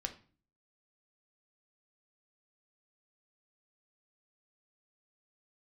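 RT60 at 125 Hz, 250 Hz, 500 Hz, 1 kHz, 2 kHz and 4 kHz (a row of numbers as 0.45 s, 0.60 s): 0.65 s, 0.60 s, 0.40 s, 0.40 s, 0.35 s, 0.35 s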